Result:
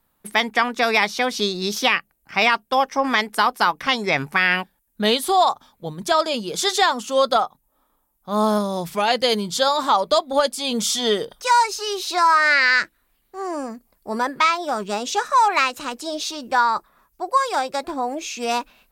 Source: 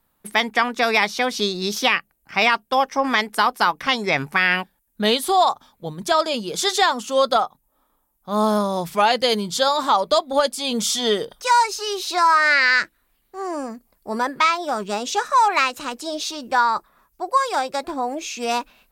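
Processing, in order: 8.57–9.08 dynamic EQ 1100 Hz, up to -6 dB, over -27 dBFS, Q 0.8

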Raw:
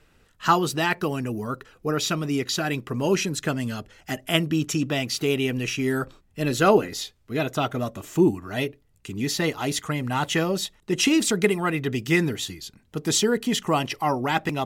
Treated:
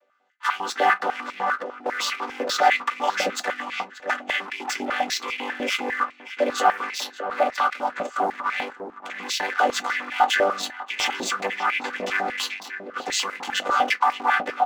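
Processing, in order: chord vocoder major triad, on G3; 2.63–3.1 high shelf 2000 Hz +12 dB; sample leveller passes 2; limiter -24 dBFS, peak gain reduction 18 dB; AGC gain up to 9.5 dB; outdoor echo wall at 100 m, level -10 dB; on a send at -6.5 dB: reverb, pre-delay 3 ms; on the sum: stepped high-pass 10 Hz 590–2300 Hz

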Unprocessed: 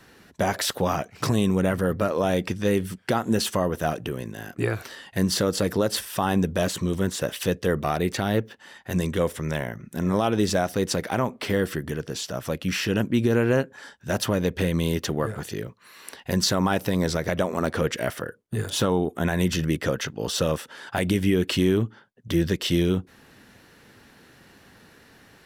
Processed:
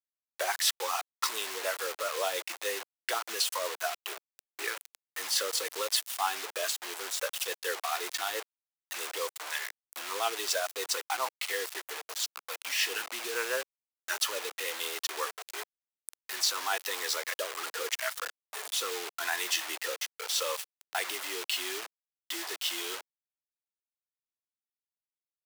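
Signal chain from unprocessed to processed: rotary speaker horn 7 Hz, later 0.8 Hz, at 14.69; spectral noise reduction 24 dB; in parallel at -1 dB: limiter -18 dBFS, peak gain reduction 7.5 dB; on the sum: bit-crush 5-bit; Bessel high-pass 830 Hz, order 6; gain -3.5 dB

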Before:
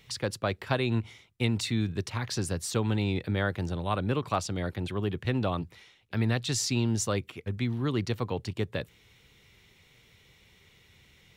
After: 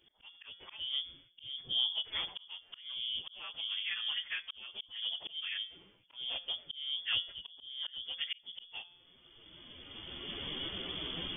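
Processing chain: inharmonic rescaling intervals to 122%; recorder AGC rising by 18 dB/s; low shelf 180 Hz -9 dB; resonator 87 Hz, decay 0.67 s, harmonics odd, mix 50%; 2.51–4.99 compressor 4:1, threshold -39 dBFS, peak gain reduction 6 dB; bell 260 Hz +5.5 dB 2.6 oct; auto swell 0.418 s; inverted band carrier 3400 Hz; gain +2.5 dB

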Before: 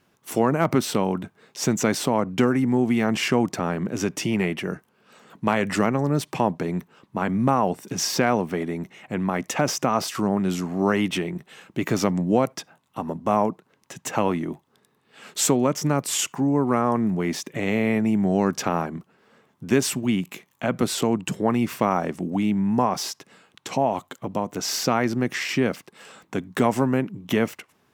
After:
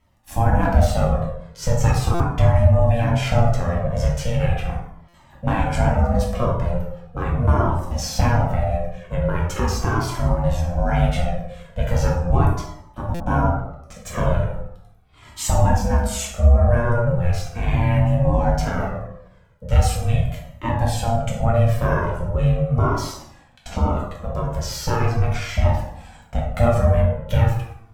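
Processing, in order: ring modulator 350 Hz; low shelf 310 Hz +11 dB; plate-style reverb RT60 0.82 s, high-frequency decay 0.6×, DRR -3 dB; stuck buffer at 2.14/5.08/13.14, samples 256, times 9; cascading flanger falling 0.39 Hz

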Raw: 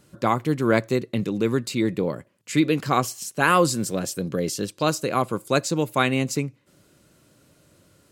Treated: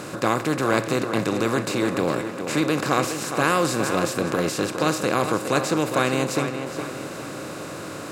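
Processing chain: per-bin compression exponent 0.4; on a send: tape echo 0.413 s, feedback 51%, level -7 dB, low-pass 3600 Hz; on the sum: gain -6 dB

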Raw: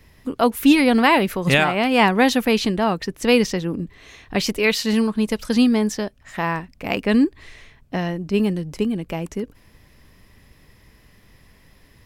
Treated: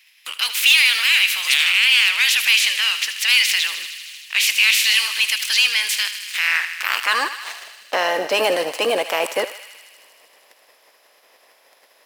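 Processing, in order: spectral limiter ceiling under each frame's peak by 23 dB; sample leveller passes 3; limiter -12 dBFS, peak gain reduction 12 dB; high-pass sweep 2500 Hz -> 580 Hz, 6.25–7.88; thinning echo 78 ms, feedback 82%, high-pass 1000 Hz, level -11 dB

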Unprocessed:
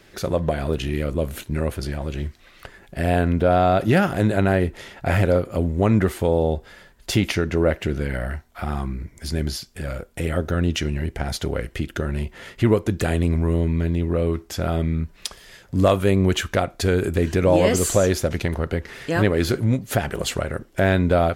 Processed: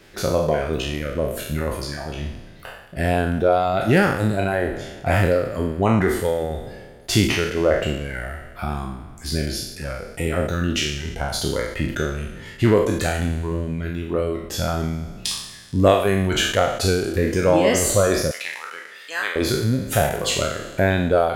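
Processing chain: spectral trails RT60 1.97 s; reverb removal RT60 1.4 s; 18.31–19.36 HPF 1200 Hz 12 dB/oct

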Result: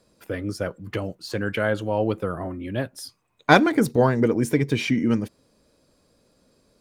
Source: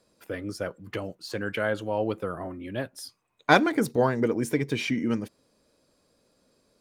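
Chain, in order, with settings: low shelf 190 Hz +6.5 dB; gain +3 dB

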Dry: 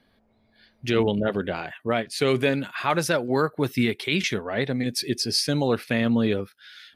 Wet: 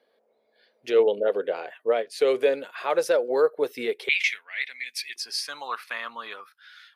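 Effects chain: resonant high-pass 480 Hz, resonance Q 4.9, from 4.09 s 2200 Hz, from 5.16 s 1100 Hz; gain -6.5 dB

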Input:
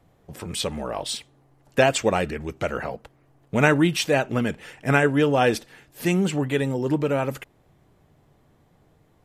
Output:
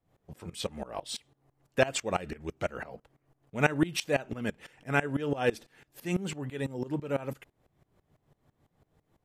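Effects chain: dB-ramp tremolo swelling 6 Hz, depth 20 dB; gain -3 dB

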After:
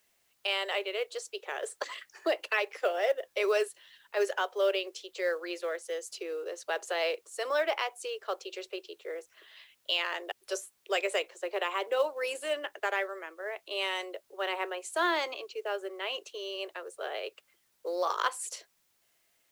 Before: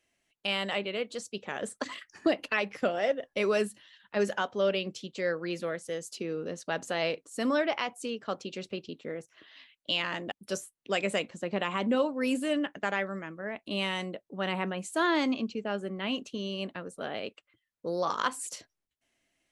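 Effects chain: steep high-pass 360 Hz 72 dB/oct; added noise white -73 dBFS; short-mantissa float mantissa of 4-bit

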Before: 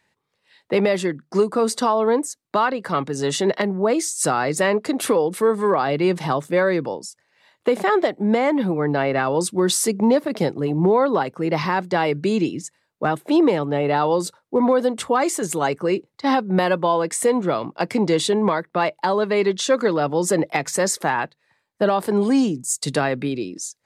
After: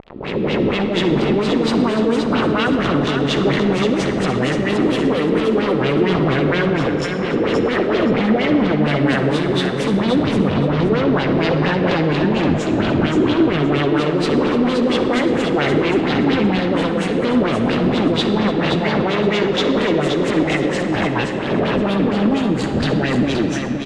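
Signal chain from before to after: spectral swells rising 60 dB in 1.63 s; passive tone stack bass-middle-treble 10-0-1; harmonic-percussive split harmonic -9 dB; compressor, threshold -44 dBFS, peak gain reduction 9 dB; fuzz box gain 57 dB, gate -59 dBFS; LFO low-pass sine 4.3 Hz 270–3500 Hz; on a send: feedback echo 0.522 s, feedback 22%, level -6 dB; on the sum: digital reverb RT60 2.9 s, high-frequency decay 0.65×, pre-delay 25 ms, DRR 7 dB; gain -4.5 dB

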